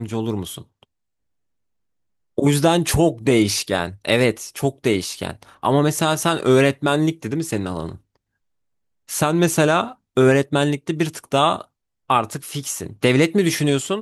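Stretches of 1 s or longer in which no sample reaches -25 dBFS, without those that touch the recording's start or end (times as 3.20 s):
0.58–2.38 s
7.92–9.10 s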